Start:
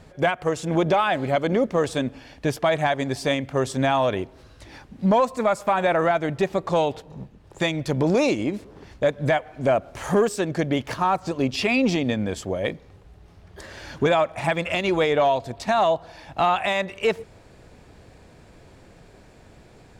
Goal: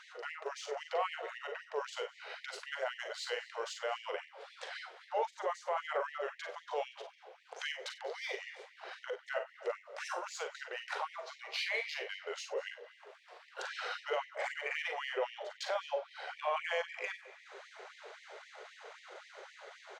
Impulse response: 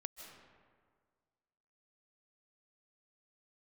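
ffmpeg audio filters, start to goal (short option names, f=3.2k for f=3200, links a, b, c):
-filter_complex "[0:a]adynamicsmooth=sensitivity=3.5:basefreq=7.9k,lowshelf=f=260:g=-10,acompressor=threshold=-44dB:ratio=2.5,alimiter=level_in=7.5dB:limit=-24dB:level=0:latency=1:release=36,volume=-7.5dB,highshelf=f=4.6k:g=-4,asetrate=38170,aresample=44100,atempo=1.15535,asplit=2[a][b];[b]adelay=41,volume=-8dB[c];[a][c]amix=inputs=2:normalize=0,asplit=2[d][e];[1:a]atrim=start_sample=2205,adelay=53[f];[e][f]afir=irnorm=-1:irlink=0,volume=-6dB[g];[d][g]amix=inputs=2:normalize=0,afftfilt=real='re*gte(b*sr/1024,360*pow(1800/360,0.5+0.5*sin(2*PI*3.8*pts/sr)))':imag='im*gte(b*sr/1024,360*pow(1800/360,0.5+0.5*sin(2*PI*3.8*pts/sr)))':win_size=1024:overlap=0.75,volume=6.5dB"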